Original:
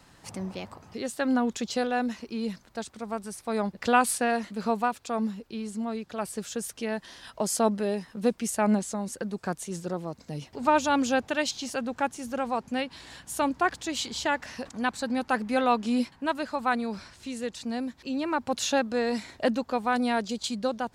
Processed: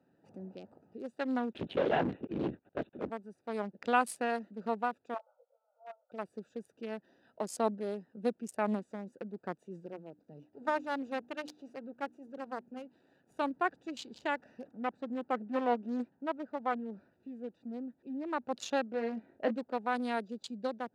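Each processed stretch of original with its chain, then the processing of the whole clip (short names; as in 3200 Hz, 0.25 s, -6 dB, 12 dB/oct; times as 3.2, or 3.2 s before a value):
1.53–3.1 sample leveller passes 3 + LPC vocoder at 8 kHz whisper
5.14–6.12 brick-wall FIR band-pass 490–1500 Hz + doubler 19 ms -3 dB
9.86–13.31 half-wave gain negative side -12 dB + notches 60/120/180/240/300 Hz
14.67–18.25 high shelf 4000 Hz -12 dB + Doppler distortion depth 0.49 ms
18.91–19.56 LPF 2400 Hz + doubler 22 ms -6.5 dB
whole clip: Wiener smoothing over 41 samples; HPF 240 Hz 12 dB/oct; high shelf 6200 Hz -6.5 dB; gain -5.5 dB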